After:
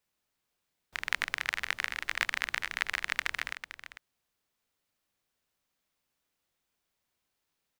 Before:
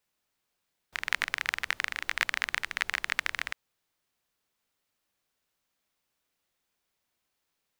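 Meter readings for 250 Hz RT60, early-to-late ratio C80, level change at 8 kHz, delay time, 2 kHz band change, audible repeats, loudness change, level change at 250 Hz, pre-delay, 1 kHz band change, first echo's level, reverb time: no reverb, no reverb, -2.0 dB, 447 ms, -1.5 dB, 1, -2.0 dB, -0.5 dB, no reverb, -1.5 dB, -12.0 dB, no reverb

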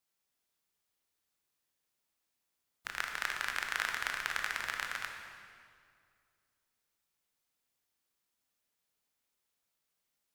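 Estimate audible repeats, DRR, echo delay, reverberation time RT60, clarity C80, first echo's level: no echo, 2.5 dB, no echo, 2.2 s, 5.0 dB, no echo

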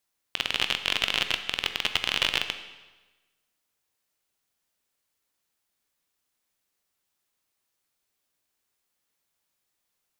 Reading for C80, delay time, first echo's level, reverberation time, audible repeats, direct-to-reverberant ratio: 12.0 dB, no echo, no echo, 1.2 s, no echo, 8.0 dB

